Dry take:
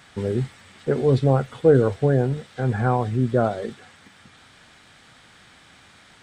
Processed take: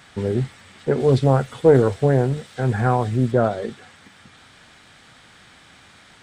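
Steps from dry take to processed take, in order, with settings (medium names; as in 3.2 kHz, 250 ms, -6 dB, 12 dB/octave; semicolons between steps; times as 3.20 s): 1.00–3.32 s: treble shelf 5.3 kHz +7.5 dB; loudspeaker Doppler distortion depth 0.2 ms; trim +2 dB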